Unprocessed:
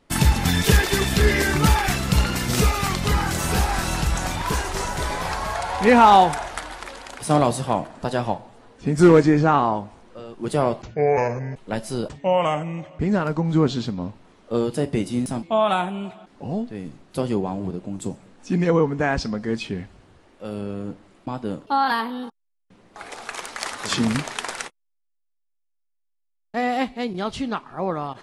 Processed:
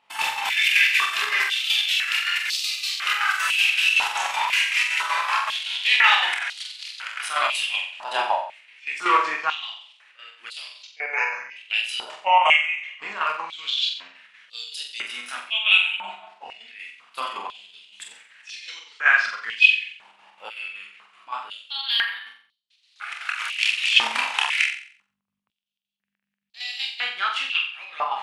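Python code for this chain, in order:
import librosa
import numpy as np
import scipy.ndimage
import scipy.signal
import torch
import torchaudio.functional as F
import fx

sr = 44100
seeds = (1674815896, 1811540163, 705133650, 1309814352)

p1 = fx.add_hum(x, sr, base_hz=50, snr_db=20)
p2 = fx.chorus_voices(p1, sr, voices=6, hz=0.27, base_ms=28, depth_ms=2.6, mix_pct=45)
p3 = fx.chopper(p2, sr, hz=5.3, depth_pct=60, duty_pct=60)
p4 = fx.peak_eq(p3, sr, hz=2700.0, db=15.0, octaves=0.95)
p5 = p4 + fx.room_flutter(p4, sr, wall_m=7.7, rt60_s=0.5, dry=0)
p6 = fx.rider(p5, sr, range_db=3, speed_s=2.0)
p7 = fx.filter_held_highpass(p6, sr, hz=2.0, low_hz=890.0, high_hz=4200.0)
y = p7 * librosa.db_to_amplitude(-3.0)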